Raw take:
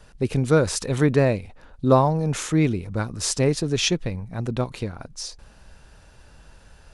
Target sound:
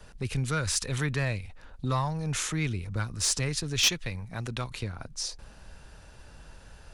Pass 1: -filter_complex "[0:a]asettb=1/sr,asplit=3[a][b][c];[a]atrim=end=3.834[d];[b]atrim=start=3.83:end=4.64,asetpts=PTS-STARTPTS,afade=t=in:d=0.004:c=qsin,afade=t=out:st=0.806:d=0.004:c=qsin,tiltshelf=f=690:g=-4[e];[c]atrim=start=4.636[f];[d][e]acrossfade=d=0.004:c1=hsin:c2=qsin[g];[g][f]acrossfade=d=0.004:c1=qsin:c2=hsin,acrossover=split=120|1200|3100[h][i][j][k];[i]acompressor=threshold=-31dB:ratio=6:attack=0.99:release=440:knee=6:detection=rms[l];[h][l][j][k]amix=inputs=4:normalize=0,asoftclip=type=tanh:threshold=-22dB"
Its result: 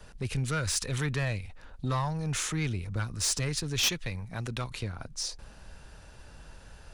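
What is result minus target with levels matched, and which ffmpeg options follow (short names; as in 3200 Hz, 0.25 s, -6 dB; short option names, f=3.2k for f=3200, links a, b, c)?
soft clip: distortion +5 dB
-filter_complex "[0:a]asettb=1/sr,asplit=3[a][b][c];[a]atrim=end=3.834[d];[b]atrim=start=3.83:end=4.64,asetpts=PTS-STARTPTS,afade=t=in:d=0.004:c=qsin,afade=t=out:st=0.806:d=0.004:c=qsin,tiltshelf=f=690:g=-4[e];[c]atrim=start=4.636[f];[d][e]acrossfade=d=0.004:c1=hsin:c2=qsin[g];[g][f]acrossfade=d=0.004:c1=qsin:c2=hsin,acrossover=split=120|1200|3100[h][i][j][k];[i]acompressor=threshold=-31dB:ratio=6:attack=0.99:release=440:knee=6:detection=rms[l];[h][l][j][k]amix=inputs=4:normalize=0,asoftclip=type=tanh:threshold=-16dB"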